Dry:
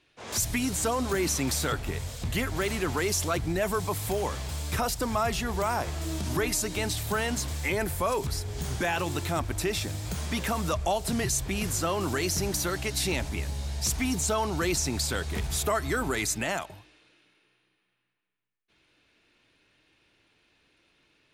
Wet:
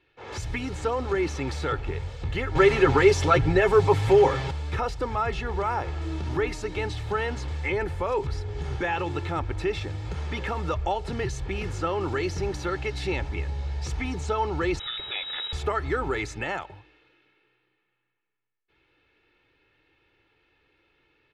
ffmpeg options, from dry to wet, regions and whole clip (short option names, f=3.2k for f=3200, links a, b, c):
-filter_complex "[0:a]asettb=1/sr,asplit=3[a][b][c];[a]atrim=end=2.554[d];[b]atrim=start=2.55:end=4.51,asetpts=PTS-STARTPTS,afade=t=in:d=0.004:c=qsin,afade=t=out:st=1.956:d=0.004:c=qsin,aecho=1:1:7.4:0.71,atrim=end_sample=86436,acontrast=76[e];[c]atrim=start=4.506[f];[d][e]acrossfade=d=0.004:c1=hsin:c2=qsin[g];[g][f]acrossfade=d=0.004:c1=qsin:c2=hsin,asettb=1/sr,asplit=3[h][i][j];[h]atrim=end=14.794[k];[i]atrim=start=14.79:end=15.53,asetpts=PTS-STARTPTS,afade=t=in:d=0.004:c=qsin,afade=t=out:st=0.736:d=0.004:c=qsin,aeval=exprs='val(0)+0.5*0.0211*sgn(val(0))':c=same,lowpass=f=3.3k:t=q:w=0.5098,lowpass=f=3.3k:t=q:w=0.6013,lowpass=f=3.3k:t=q:w=0.9,lowpass=f=3.3k:t=q:w=2.563,afreqshift=-3900[l];[j]atrim=start=15.526[m];[k][l]acrossfade=d=0.004:c1=hsin:c2=qsin[n];[n][m]acrossfade=d=0.004:c1=qsin:c2=hsin,lowpass=2.8k,aecho=1:1:2.3:0.56"